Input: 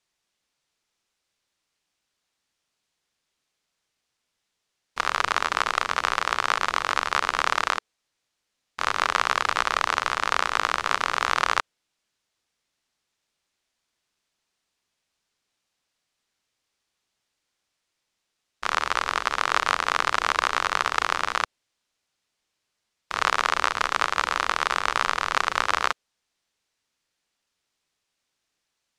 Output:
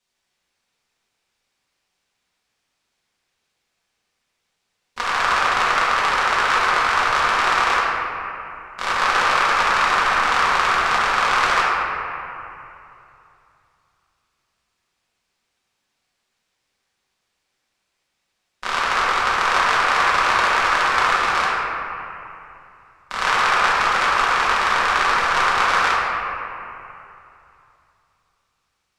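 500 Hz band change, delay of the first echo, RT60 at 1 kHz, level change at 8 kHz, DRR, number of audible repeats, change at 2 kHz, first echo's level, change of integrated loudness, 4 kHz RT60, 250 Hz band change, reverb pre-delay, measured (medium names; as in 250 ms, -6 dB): +7.0 dB, no echo, 2.8 s, +3.0 dB, -8.5 dB, no echo, +7.0 dB, no echo, +6.5 dB, 1.8 s, +6.5 dB, 3 ms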